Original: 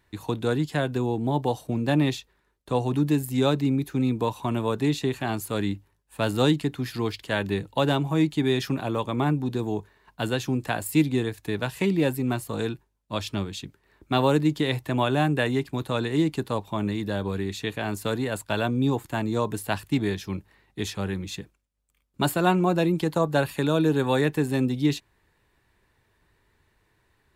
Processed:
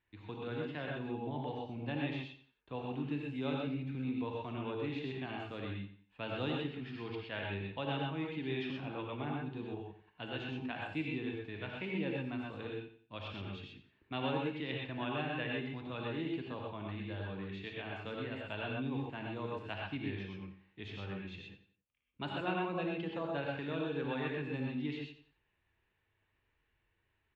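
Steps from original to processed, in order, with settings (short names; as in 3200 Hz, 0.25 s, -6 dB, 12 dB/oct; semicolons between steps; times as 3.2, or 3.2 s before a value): ladder low-pass 3300 Hz, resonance 50%; on a send: feedback echo 89 ms, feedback 33%, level -12.5 dB; on the sum: non-linear reverb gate 0.15 s rising, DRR -1 dB; gain -8.5 dB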